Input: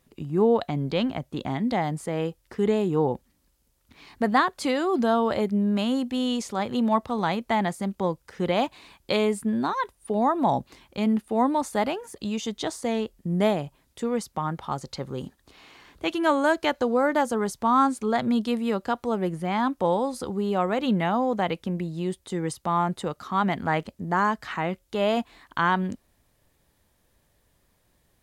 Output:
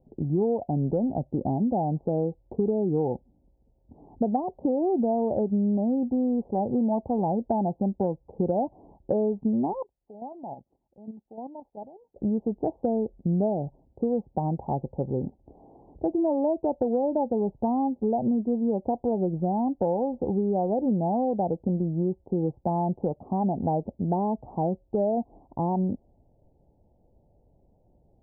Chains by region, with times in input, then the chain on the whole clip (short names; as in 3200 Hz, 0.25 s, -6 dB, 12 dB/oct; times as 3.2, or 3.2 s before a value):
9.82–12.16 pre-emphasis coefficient 0.9 + level quantiser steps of 10 dB
whole clip: steep low-pass 840 Hz 72 dB/oct; compressor, threshold -28 dBFS; gain +6 dB